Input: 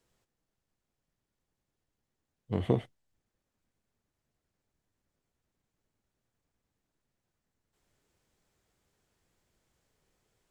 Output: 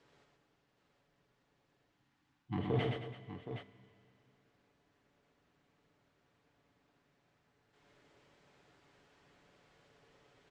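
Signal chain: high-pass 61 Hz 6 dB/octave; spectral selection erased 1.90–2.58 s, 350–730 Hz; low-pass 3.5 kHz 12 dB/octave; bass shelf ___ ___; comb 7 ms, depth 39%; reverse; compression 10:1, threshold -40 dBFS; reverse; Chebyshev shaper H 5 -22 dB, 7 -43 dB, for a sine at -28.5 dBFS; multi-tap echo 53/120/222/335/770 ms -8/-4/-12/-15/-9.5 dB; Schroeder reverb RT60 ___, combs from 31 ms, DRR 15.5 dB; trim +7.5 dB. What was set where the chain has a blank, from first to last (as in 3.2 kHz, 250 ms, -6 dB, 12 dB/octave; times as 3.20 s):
180 Hz, -7.5 dB, 2.7 s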